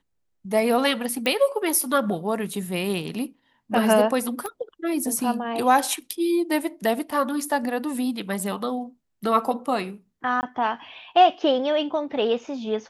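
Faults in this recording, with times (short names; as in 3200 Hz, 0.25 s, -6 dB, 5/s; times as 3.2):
1.26 pop -11 dBFS
4.46 pop -17 dBFS
10.41–10.43 gap 19 ms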